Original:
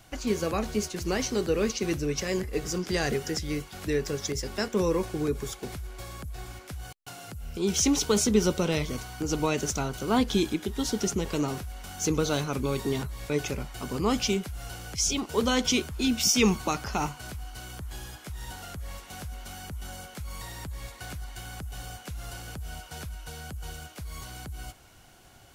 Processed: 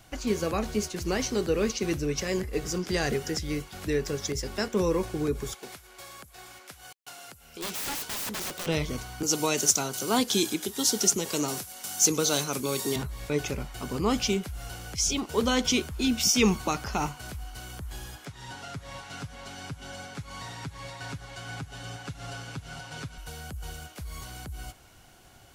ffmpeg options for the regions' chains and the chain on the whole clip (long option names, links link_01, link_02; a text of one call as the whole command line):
ffmpeg -i in.wav -filter_complex "[0:a]asettb=1/sr,asplit=3[link_01][link_02][link_03];[link_01]atrim=end=5.544[link_04];[link_02]atrim=start=5.54:end=8.67,asetpts=PTS-STARTPTS,afade=type=in:duration=0.004:curve=qsin,afade=type=out:start_time=3.126:duration=0.004:curve=qsin,highpass=frequency=720:poles=1,aeval=exprs='(mod(26.6*val(0)+1,2)-1)/26.6':channel_layout=same[link_05];[link_03]atrim=start=8.666[link_06];[link_04][link_05]acrossfade=duration=0.004:curve1=hsin:curve2=qsin[link_07];[link_07][link_06]acrossfade=duration=0.004:curve1=qsin:curve2=hsin,asettb=1/sr,asplit=3[link_08][link_09][link_10];[link_08]atrim=end=9.234[link_11];[link_09]atrim=start=9.23:end=12.96,asetpts=PTS-STARTPTS,afade=type=in:duration=0.004:curve=qsin,afade=type=out:start_time=3.726:duration=0.004:curve=qsin,highpass=frequency=110:width=0.5412,highpass=frequency=110:width=1.3066,bass=frequency=250:gain=-5,treble=frequency=4000:gain=12[link_12];[link_10]atrim=start=12.956[link_13];[link_11][link_12]acrossfade=duration=0.004:curve1=hsin:curve2=qsin[link_14];[link_14][link_13]acrossfade=duration=0.004:curve1=qsin:curve2=hsin,asettb=1/sr,asplit=3[link_15][link_16][link_17];[link_15]atrim=end=18.254[link_18];[link_16]atrim=start=18.25:end=23.18,asetpts=PTS-STARTPTS,afade=type=in:duration=0.004:curve=qsin,afade=type=out:start_time=4.926:duration=0.004:curve=qsin,highpass=100,lowpass=6300,aecho=1:1:7.3:0.64,atrim=end_sample=217413,aecho=1:1:477:0.562,atrim=end_sample=217413[link_19];[link_17]atrim=start=23.176[link_20];[link_18][link_19]acrossfade=duration=0.004:curve1=hsin:curve2=qsin[link_21];[link_21][link_20]acrossfade=duration=0.004:curve1=qsin:curve2=hsin" out.wav